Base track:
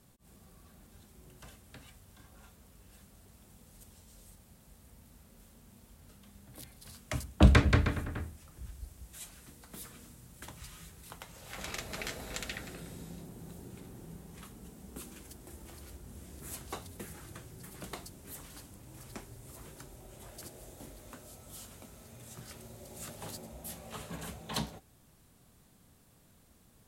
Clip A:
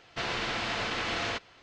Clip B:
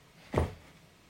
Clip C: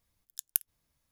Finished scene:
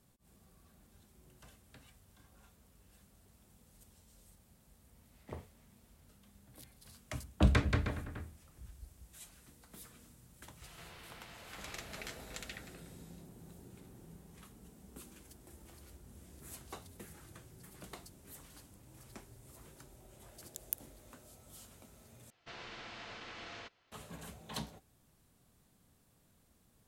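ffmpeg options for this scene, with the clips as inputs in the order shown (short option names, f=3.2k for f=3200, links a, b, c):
-filter_complex "[2:a]asplit=2[a][b];[1:a]asplit=2[c][d];[0:a]volume=-6.5dB[e];[c]acompressor=threshold=-51dB:ratio=6:attack=3.2:release=140:knee=1:detection=peak[f];[3:a]dynaudnorm=f=110:g=5:m=9dB[g];[e]asplit=2[h][i];[h]atrim=end=22.304[j];[d]atrim=end=1.62,asetpts=PTS-STARTPTS,volume=-16.5dB[k];[i]atrim=start=23.916[l];[a]atrim=end=1.09,asetpts=PTS-STARTPTS,volume=-17dB,afade=t=in:d=0.004:c=hsin,afade=t=out:st=1.086:d=0.004:c=hsin,adelay=4950[m];[b]atrim=end=1.09,asetpts=PTS-STARTPTS,volume=-17dB,afade=t=in:d=0.004:c=hsin,afade=t=out:st=1.086:d=0.004:c=hsin,adelay=7520[n];[f]atrim=end=1.62,asetpts=PTS-STARTPTS,volume=-2.5dB,afade=t=in:d=0.004:c=hsin,afade=t=out:st=1.616:d=0.004:c=hsin,adelay=10620[o];[g]atrim=end=1.11,asetpts=PTS-STARTPTS,volume=-12.5dB,afade=t=in:d=0.004:c=hsin,afade=t=out:st=1.106:d=0.004:c=hsin,adelay=20170[p];[j][k]acrossfade=d=0.004:c1=hsin:c2=hsin[q];[q][l]acrossfade=d=0.004:c1=hsin:c2=hsin[r];[r][m][n][o][p]amix=inputs=5:normalize=0"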